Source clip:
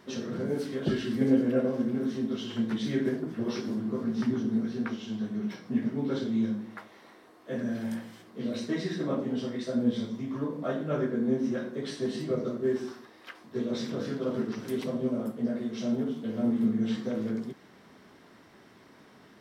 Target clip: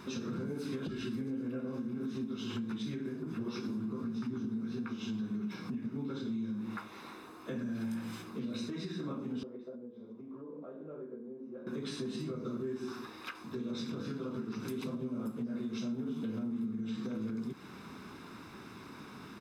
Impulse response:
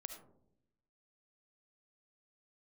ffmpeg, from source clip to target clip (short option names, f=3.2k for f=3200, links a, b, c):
-filter_complex "[0:a]acompressor=threshold=-36dB:ratio=6,aecho=1:1:0.8:0.58,alimiter=level_in=11dB:limit=-24dB:level=0:latency=1:release=225,volume=-11dB,asettb=1/sr,asplit=3[a][b][c];[a]atrim=end=9.434[d];[b]atrim=start=9.43:end=11.67,asetpts=PTS-STARTPTS,afade=t=in:d=0.004:c=qsin,afade=t=out:st=2.236:d=0.004:c=qsin,bandpass=f=490:t=q:w=2.2:csg=0[e];[c]atrim=start=11.666[f];[d][e]acrossfade=d=0.004:c1=hsin:c2=qsin[g];[g][f]acrossfade=d=0.004:c1=qsin:c2=hsin,volume=5dB"